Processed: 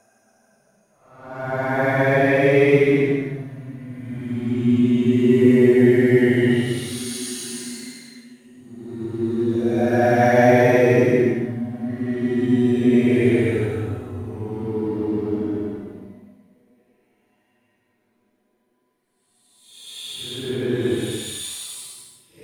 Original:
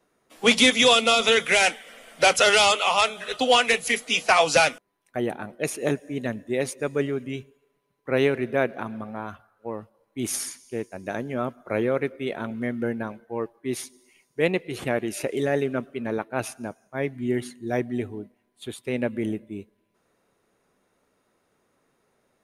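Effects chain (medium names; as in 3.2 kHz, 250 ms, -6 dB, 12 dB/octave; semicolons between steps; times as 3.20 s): waveshaping leveller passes 1; Paulstretch 11×, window 0.10 s, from 16.80 s; trim +6 dB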